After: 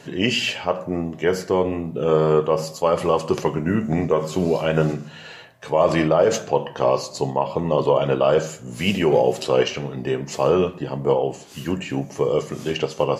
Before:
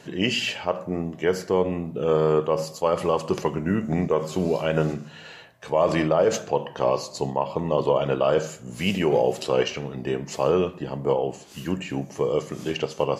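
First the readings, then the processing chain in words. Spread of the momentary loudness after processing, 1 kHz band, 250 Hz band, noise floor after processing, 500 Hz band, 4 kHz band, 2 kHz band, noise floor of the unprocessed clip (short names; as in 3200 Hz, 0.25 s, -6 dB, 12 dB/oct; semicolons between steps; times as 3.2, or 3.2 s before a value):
9 LU, +3.5 dB, +3.0 dB, -41 dBFS, +3.0 dB, +3.0 dB, +3.0 dB, -45 dBFS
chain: flange 1.4 Hz, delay 7 ms, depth 1.6 ms, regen -64%; gain +7.5 dB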